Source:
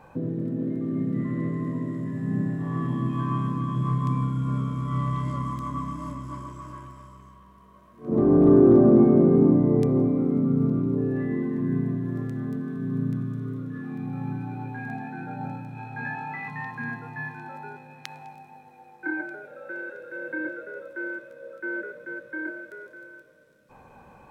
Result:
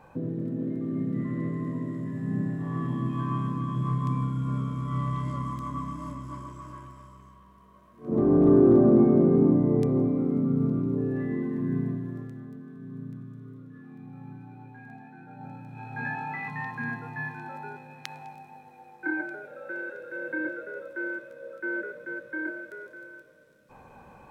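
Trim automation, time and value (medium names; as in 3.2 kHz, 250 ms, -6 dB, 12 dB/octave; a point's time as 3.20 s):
11.88 s -2.5 dB
12.50 s -12 dB
15.26 s -12 dB
16.00 s 0 dB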